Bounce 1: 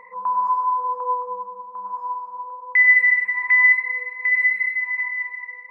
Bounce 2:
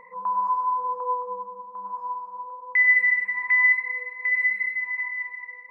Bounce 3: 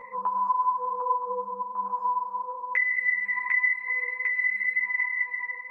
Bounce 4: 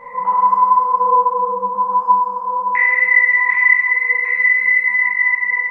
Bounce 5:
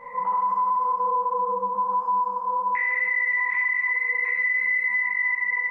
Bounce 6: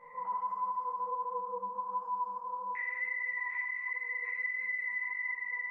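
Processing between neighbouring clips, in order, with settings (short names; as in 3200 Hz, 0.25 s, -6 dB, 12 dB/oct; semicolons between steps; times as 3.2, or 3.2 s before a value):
low shelf 360 Hz +9 dB; gain -4.5 dB
compressor 6:1, threshold -29 dBFS, peak gain reduction 14 dB; ensemble effect; gain +8 dB
reverb RT60 2.3 s, pre-delay 16 ms, DRR -9 dB; gain +2.5 dB
limiter -12.5 dBFS, peak gain reduction 10.5 dB; gain -5 dB
flange 1.5 Hz, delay 5.6 ms, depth 3.7 ms, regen +40%; gain -8.5 dB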